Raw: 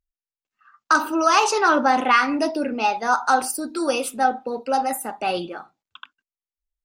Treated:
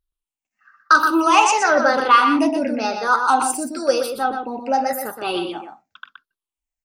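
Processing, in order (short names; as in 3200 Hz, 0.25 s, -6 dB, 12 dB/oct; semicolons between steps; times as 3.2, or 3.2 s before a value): moving spectral ripple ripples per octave 0.62, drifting -0.96 Hz, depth 12 dB; 4.06–4.81 high shelf 6100 Hz -11 dB; outdoor echo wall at 21 m, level -6 dB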